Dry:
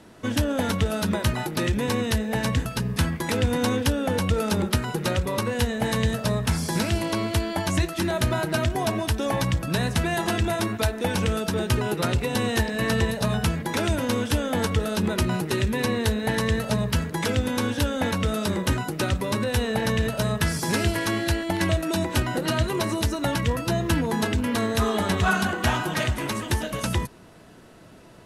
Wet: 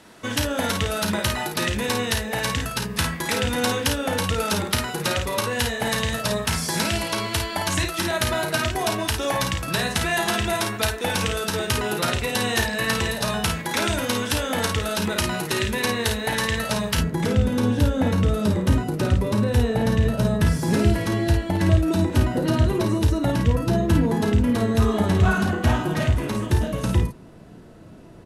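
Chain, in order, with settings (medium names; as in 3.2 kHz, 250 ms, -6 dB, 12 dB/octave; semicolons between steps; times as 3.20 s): tilt shelf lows -4.5 dB, about 630 Hz, from 16.97 s lows +5.5 dB; early reflections 34 ms -9.5 dB, 53 ms -6 dB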